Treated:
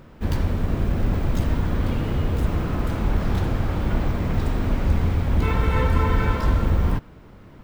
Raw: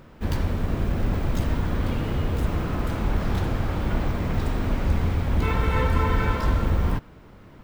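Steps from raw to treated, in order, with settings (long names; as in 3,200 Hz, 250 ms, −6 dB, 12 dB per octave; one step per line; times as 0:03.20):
low-shelf EQ 440 Hz +2.5 dB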